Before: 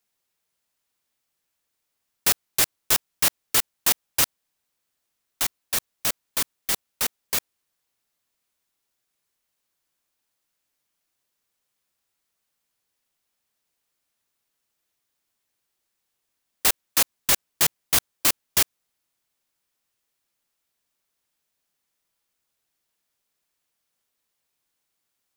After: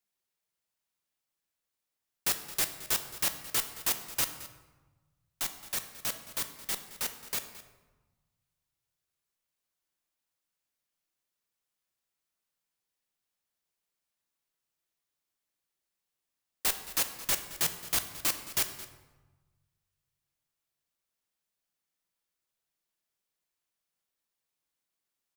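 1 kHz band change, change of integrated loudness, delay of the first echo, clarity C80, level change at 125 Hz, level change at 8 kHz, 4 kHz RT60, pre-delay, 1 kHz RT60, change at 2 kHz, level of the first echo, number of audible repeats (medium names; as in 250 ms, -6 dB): -8.0 dB, -8.5 dB, 219 ms, 11.0 dB, -8.0 dB, -8.5 dB, 0.70 s, 5 ms, 1.2 s, -8.5 dB, -17.0 dB, 1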